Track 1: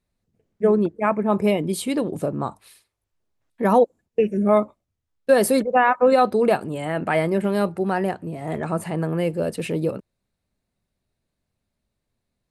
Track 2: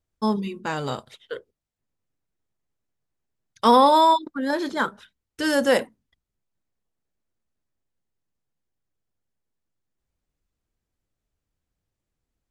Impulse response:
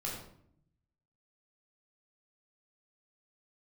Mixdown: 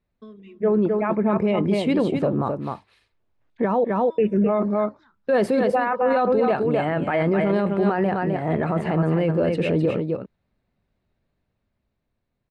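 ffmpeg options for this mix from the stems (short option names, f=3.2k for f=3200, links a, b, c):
-filter_complex "[0:a]dynaudnorm=f=140:g=17:m=4dB,lowpass=2.9k,volume=1dB,asplit=3[a][b][c];[b]volume=-7dB[d];[1:a]lowpass=f=4.7k:w=0.5412,lowpass=f=4.7k:w=1.3066,acompressor=threshold=-29dB:ratio=4,asplit=2[e][f];[f]afreqshift=-0.28[g];[e][g]amix=inputs=2:normalize=1,volume=-8.5dB,asplit=2[h][i];[i]volume=-18.5dB[j];[c]apad=whole_len=551453[k];[h][k]sidechaincompress=threshold=-24dB:ratio=8:attack=16:release=259[l];[d][j]amix=inputs=2:normalize=0,aecho=0:1:258:1[m];[a][l][m]amix=inputs=3:normalize=0,alimiter=limit=-12.5dB:level=0:latency=1:release=14"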